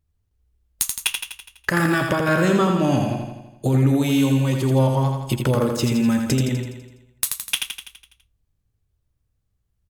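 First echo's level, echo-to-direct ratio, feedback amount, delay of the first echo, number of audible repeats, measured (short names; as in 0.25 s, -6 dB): -5.0 dB, -3.5 dB, 57%, 83 ms, 7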